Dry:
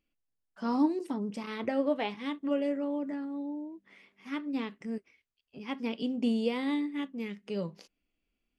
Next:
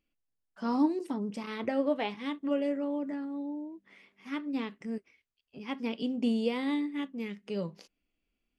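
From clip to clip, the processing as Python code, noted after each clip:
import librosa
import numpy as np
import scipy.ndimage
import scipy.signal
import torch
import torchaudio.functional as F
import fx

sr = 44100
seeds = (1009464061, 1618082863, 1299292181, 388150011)

y = x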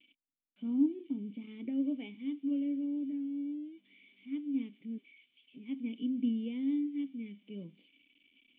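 y = x + 0.5 * 10.0 ** (-32.5 / 20.0) * np.diff(np.sign(x), prepend=np.sign(x[:1]))
y = fx.formant_cascade(y, sr, vowel='i')
y = fx.low_shelf(y, sr, hz=83.0, db=-9.0)
y = y * librosa.db_to_amplitude(1.5)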